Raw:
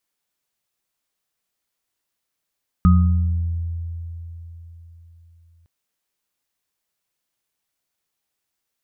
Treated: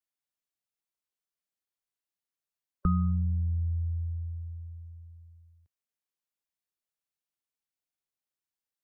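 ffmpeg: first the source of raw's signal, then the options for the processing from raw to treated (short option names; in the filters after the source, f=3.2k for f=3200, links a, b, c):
-f lavfi -i "aevalsrc='0.282*pow(10,-3*t/4.04)*sin(2*PI*84.1*t)+0.282*pow(10,-3*t/1.23)*sin(2*PI*179*t)+0.0841*pow(10,-3*t/0.56)*sin(2*PI*1250*t)':d=2.81:s=44100"
-filter_complex "[0:a]afftdn=nr=15:nf=-35,acrossover=split=200[a][b];[a]acompressor=threshold=-27dB:ratio=6[c];[b]alimiter=limit=-23.5dB:level=0:latency=1:release=331[d];[c][d]amix=inputs=2:normalize=0"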